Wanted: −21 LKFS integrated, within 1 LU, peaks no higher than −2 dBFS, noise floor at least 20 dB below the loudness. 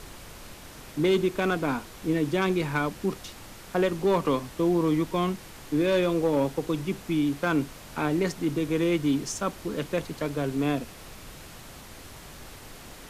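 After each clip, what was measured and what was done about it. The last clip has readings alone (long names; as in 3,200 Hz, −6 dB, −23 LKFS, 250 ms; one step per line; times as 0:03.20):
share of clipped samples 0.4%; peaks flattened at −16.5 dBFS; background noise floor −46 dBFS; target noise floor −47 dBFS; integrated loudness −27.0 LKFS; sample peak −16.5 dBFS; target loudness −21.0 LKFS
→ clipped peaks rebuilt −16.5 dBFS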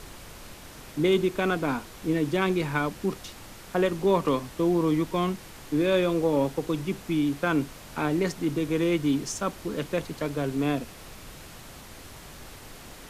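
share of clipped samples 0.0%; background noise floor −46 dBFS; target noise floor −47 dBFS
→ noise reduction from a noise print 6 dB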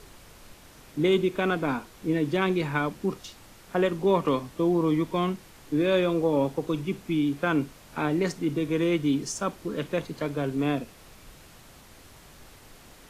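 background noise floor −52 dBFS; integrated loudness −27.0 LKFS; sample peak −10.5 dBFS; target loudness −21.0 LKFS
→ level +6 dB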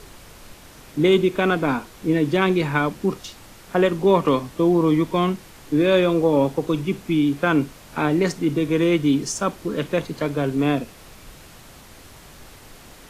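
integrated loudness −21.0 LKFS; sample peak −4.5 dBFS; background noise floor −46 dBFS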